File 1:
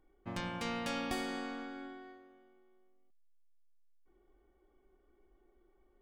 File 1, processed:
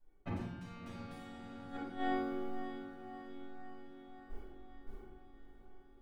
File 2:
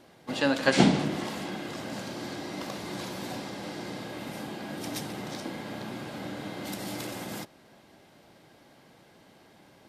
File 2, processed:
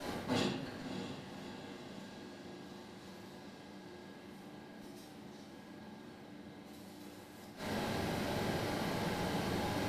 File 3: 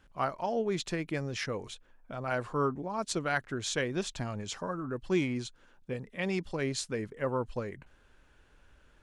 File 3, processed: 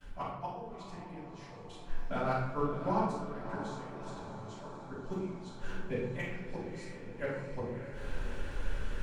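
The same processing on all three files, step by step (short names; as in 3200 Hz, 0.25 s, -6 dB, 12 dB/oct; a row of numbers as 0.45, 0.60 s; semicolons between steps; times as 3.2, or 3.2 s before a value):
gate with hold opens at -57 dBFS; reverse; compressor 8:1, threshold -43 dBFS; reverse; flipped gate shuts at -38 dBFS, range -26 dB; hard clip -40 dBFS; on a send: diffused feedback echo 0.616 s, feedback 64%, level -10 dB; on the sum: shoebox room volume 260 m³, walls mixed, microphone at 6.4 m; gain +3 dB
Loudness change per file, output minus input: -4.5, -10.0, -5.5 LU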